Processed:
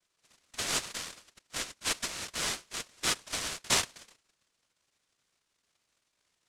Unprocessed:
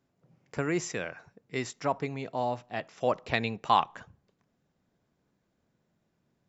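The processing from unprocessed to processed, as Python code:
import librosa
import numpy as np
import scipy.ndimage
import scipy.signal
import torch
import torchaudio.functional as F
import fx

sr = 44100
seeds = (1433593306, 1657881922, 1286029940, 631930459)

y = fx.peak_eq(x, sr, hz=2700.0, db=-13.0, octaves=0.77)
y = fx.noise_vocoder(y, sr, seeds[0], bands=1)
y = y * np.sin(2.0 * np.pi * 820.0 * np.arange(len(y)) / sr)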